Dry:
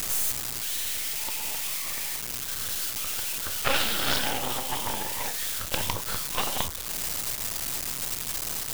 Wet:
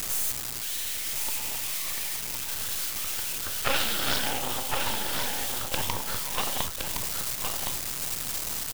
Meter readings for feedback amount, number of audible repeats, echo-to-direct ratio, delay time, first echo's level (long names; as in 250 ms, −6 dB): repeats not evenly spaced, 1, −5.5 dB, 1,065 ms, −5.5 dB